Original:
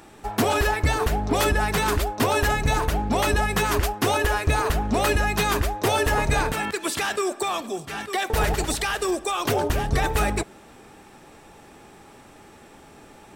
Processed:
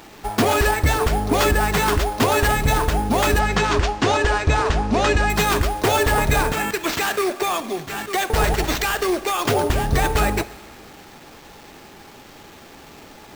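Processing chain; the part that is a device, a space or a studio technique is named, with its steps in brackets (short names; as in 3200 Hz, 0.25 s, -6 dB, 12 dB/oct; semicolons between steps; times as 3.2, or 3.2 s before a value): early 8-bit sampler (sample-rate reducer 10000 Hz, jitter 0%; bit-crush 8-bit); 3.39–5.3 LPF 6900 Hz 24 dB/oct; Schroeder reverb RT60 1.6 s, combs from 32 ms, DRR 16 dB; gain +3.5 dB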